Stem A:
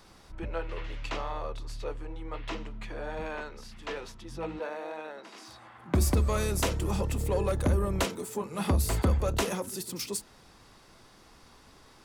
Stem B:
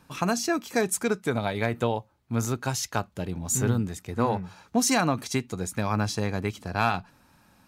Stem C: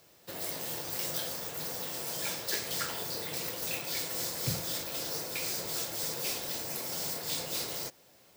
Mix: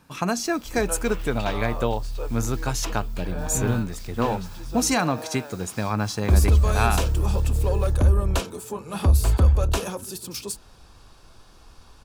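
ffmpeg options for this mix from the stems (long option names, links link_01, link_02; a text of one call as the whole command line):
ffmpeg -i stem1.wav -i stem2.wav -i stem3.wav -filter_complex "[0:a]bandreject=frequency=2000:width=5.2,asubboost=boost=3:cutoff=100,adelay=350,volume=2.5dB[link_01];[1:a]volume=1dB[link_02];[2:a]adelay=50,volume=-17dB[link_03];[link_01][link_02][link_03]amix=inputs=3:normalize=0" out.wav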